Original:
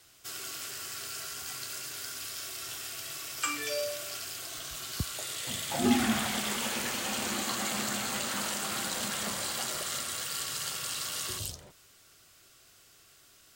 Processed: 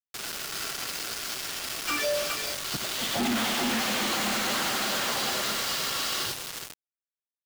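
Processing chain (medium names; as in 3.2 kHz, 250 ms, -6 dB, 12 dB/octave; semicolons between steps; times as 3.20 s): tracing distortion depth 0.054 ms; low-pass 6.1 kHz 24 dB/octave; multi-tap echo 141/604/755 ms -9/-19.5/-5.5 dB; in parallel at -1 dB: compression 6:1, threshold -48 dBFS, peak gain reduction 25.5 dB; on the sum: high-pass 190 Hz 12 dB/octave; plain phase-vocoder stretch 0.55×; companded quantiser 2-bit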